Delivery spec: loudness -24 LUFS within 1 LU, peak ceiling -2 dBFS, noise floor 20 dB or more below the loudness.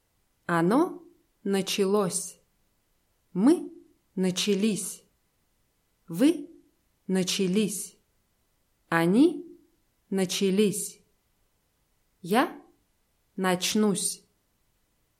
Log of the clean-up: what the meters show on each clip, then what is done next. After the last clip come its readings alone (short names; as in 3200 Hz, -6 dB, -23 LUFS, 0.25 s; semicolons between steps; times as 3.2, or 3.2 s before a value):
loudness -26.5 LUFS; peak -8.0 dBFS; loudness target -24.0 LUFS
-> gain +2.5 dB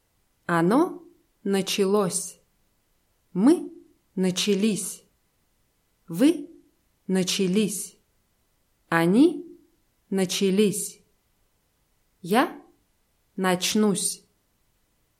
loudness -24.0 LUFS; peak -5.5 dBFS; noise floor -70 dBFS